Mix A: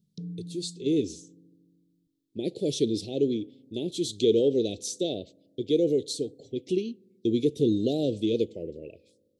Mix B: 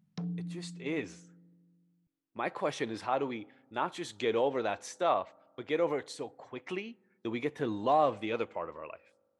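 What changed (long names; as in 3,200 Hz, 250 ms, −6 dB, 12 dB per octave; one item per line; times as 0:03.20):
speech −11.5 dB
master: remove elliptic band-stop filter 420–3,700 Hz, stop band 60 dB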